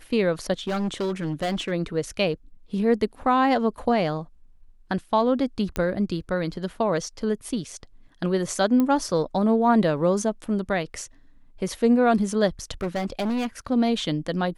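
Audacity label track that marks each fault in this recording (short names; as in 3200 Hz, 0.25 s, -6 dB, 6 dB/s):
0.670000	1.720000	clipped -22.5 dBFS
5.760000	5.760000	pop -12 dBFS
8.800000	8.800000	pop -12 dBFS
12.810000	13.470000	clipped -22.5 dBFS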